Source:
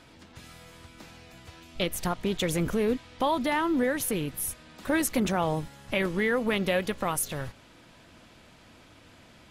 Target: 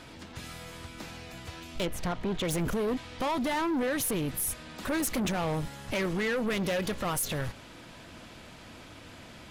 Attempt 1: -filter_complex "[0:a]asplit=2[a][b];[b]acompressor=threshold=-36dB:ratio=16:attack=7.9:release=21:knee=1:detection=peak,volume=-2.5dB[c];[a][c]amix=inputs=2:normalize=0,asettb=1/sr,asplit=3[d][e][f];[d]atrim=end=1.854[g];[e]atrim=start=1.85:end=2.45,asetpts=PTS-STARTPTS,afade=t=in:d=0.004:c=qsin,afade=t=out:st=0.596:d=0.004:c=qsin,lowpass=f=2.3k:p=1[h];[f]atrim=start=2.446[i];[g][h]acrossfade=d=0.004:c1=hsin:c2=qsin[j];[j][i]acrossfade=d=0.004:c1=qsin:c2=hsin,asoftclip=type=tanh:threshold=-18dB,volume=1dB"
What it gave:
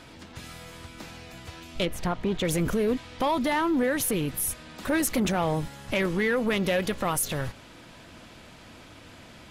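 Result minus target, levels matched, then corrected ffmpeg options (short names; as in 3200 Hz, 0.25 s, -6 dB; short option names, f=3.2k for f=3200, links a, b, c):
soft clip: distortion -9 dB
-filter_complex "[0:a]asplit=2[a][b];[b]acompressor=threshold=-36dB:ratio=16:attack=7.9:release=21:knee=1:detection=peak,volume=-2.5dB[c];[a][c]amix=inputs=2:normalize=0,asettb=1/sr,asplit=3[d][e][f];[d]atrim=end=1.854[g];[e]atrim=start=1.85:end=2.45,asetpts=PTS-STARTPTS,afade=t=in:d=0.004:c=qsin,afade=t=out:st=0.596:d=0.004:c=qsin,lowpass=f=2.3k:p=1[h];[f]atrim=start=2.446[i];[g][h]acrossfade=d=0.004:c1=hsin:c2=qsin[j];[j][i]acrossfade=d=0.004:c1=qsin:c2=hsin,asoftclip=type=tanh:threshold=-27dB,volume=1dB"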